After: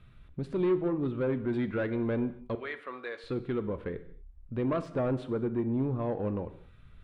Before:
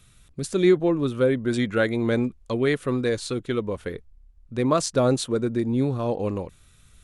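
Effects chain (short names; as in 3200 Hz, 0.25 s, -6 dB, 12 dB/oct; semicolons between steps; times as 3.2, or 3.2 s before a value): 2.55–3.24 HPF 930 Hz 12 dB/oct; 4.81–6.03 bell 4200 Hz -8 dB 0.37 oct; in parallel at +2.5 dB: compressor, threshold -36 dBFS, peak gain reduction 21 dB; on the sum: soft clip -17 dBFS, distortion -13 dB; air absorption 470 m; non-linear reverb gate 0.27 s falling, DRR 10.5 dB; gain -6 dB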